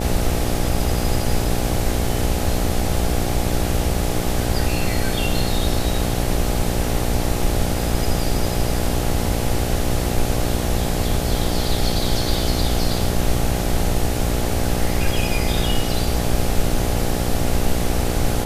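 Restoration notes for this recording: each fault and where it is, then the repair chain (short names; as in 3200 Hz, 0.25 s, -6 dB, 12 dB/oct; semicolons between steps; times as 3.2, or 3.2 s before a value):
buzz 60 Hz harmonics 14 -24 dBFS
0.86 gap 2.5 ms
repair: de-hum 60 Hz, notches 14; interpolate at 0.86, 2.5 ms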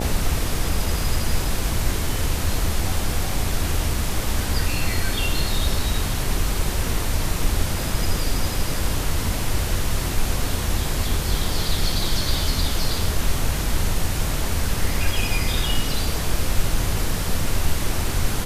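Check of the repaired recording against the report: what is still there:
none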